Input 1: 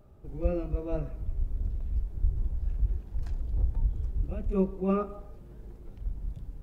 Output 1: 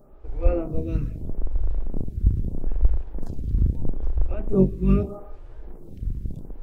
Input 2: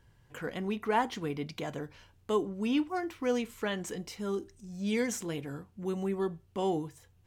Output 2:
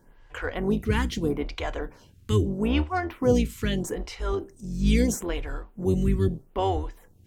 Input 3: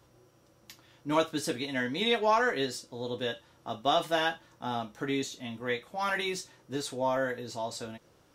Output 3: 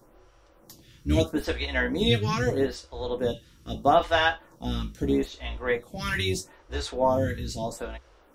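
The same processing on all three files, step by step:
octave divider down 2 oct, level +3 dB; lamp-driven phase shifter 0.78 Hz; normalise loudness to -27 LUFS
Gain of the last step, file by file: +8.0 dB, +9.5 dB, +7.5 dB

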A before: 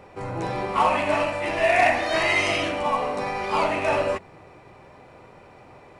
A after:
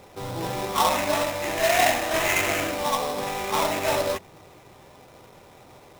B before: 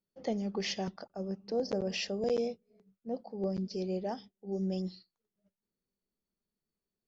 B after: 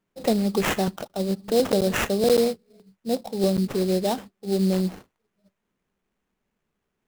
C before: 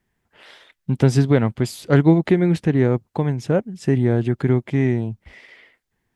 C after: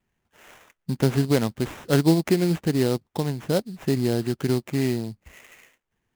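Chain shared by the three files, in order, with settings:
dynamic bell 110 Hz, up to -5 dB, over -32 dBFS, Q 1.7; sample-rate reducer 4.6 kHz, jitter 20%; normalise loudness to -24 LUFS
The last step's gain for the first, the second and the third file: -1.5 dB, +11.5 dB, -3.5 dB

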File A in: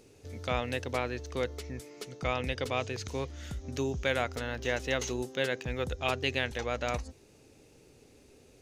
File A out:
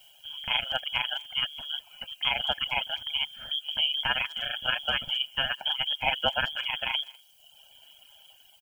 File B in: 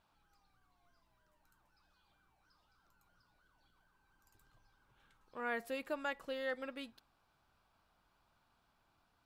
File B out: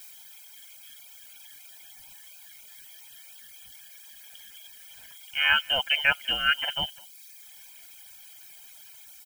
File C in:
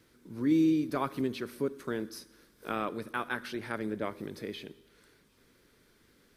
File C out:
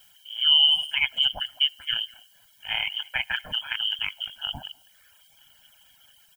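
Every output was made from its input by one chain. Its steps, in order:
level rider gain up to 3.5 dB; frequency inversion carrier 3.3 kHz; ring modulator 74 Hz; added noise blue -64 dBFS; comb 1.3 ms, depth 99%; speakerphone echo 200 ms, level -14 dB; reverb removal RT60 0.96 s; peak normalisation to -9 dBFS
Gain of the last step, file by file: +1.0 dB, +14.5 dB, +3.5 dB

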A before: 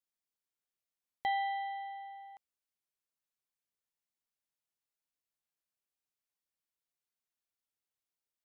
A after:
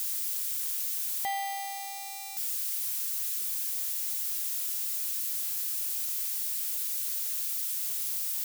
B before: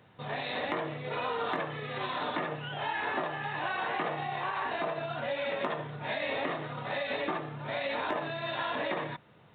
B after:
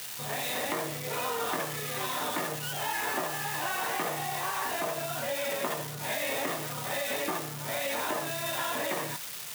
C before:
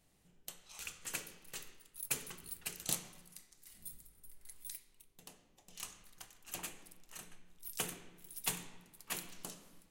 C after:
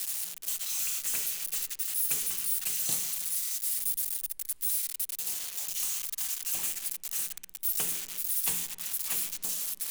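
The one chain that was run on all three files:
zero-crossing glitches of -26 dBFS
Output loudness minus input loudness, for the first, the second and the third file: +8.0 LU, +2.5 LU, +14.0 LU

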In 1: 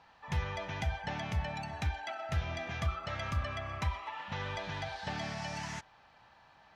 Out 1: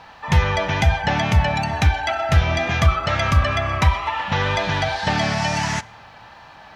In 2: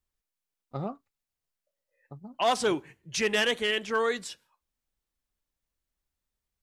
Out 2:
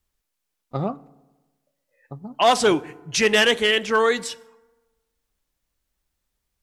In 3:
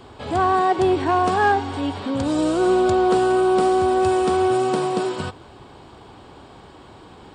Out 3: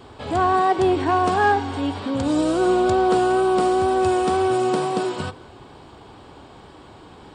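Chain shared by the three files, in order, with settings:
FDN reverb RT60 1.2 s, low-frequency decay 1×, high-frequency decay 0.5×, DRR 19.5 dB; wow and flutter 23 cents; normalise loudness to -20 LUFS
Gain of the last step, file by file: +17.5 dB, +8.5 dB, 0.0 dB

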